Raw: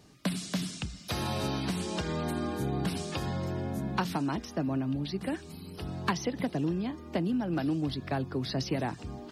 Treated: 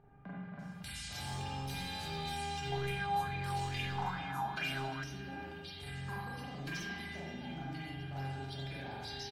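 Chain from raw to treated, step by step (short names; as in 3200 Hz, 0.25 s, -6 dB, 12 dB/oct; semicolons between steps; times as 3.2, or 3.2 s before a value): passive tone stack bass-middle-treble 5-5-5; comb 1.3 ms, depth 36%; bands offset in time lows, highs 0.59 s, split 1400 Hz; upward compressor, threshold -58 dBFS; spring tank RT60 1.6 s, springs 37/44 ms, chirp 50 ms, DRR -7.5 dB; hard clip -32 dBFS, distortion -16 dB; limiter -34.5 dBFS, peak gain reduction 2.5 dB; resonator 400 Hz, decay 0.35 s, harmonics all, mix 90%; 2.72–5.04 LFO bell 2.3 Hz 790–2400 Hz +14 dB; gain +15.5 dB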